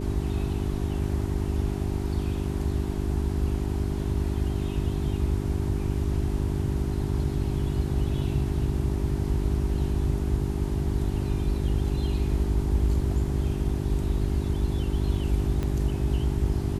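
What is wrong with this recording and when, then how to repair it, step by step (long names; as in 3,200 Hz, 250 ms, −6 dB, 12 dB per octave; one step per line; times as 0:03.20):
mains hum 50 Hz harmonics 8 −30 dBFS
0:15.63: click −18 dBFS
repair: click removal
hum removal 50 Hz, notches 8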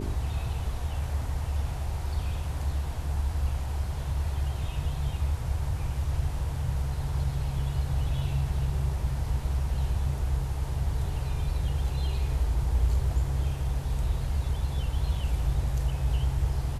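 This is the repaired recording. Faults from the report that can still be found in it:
0:15.63: click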